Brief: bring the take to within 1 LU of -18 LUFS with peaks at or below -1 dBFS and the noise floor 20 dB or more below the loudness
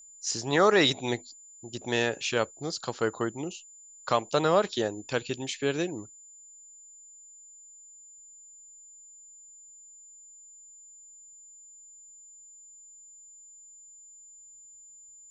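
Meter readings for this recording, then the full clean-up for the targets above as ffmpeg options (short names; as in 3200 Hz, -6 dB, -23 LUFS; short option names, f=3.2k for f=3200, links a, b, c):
steady tone 7100 Hz; tone level -49 dBFS; loudness -28.0 LUFS; peak -10.0 dBFS; loudness target -18.0 LUFS
-> -af "bandreject=f=7.1k:w=30"
-af "volume=10dB,alimiter=limit=-1dB:level=0:latency=1"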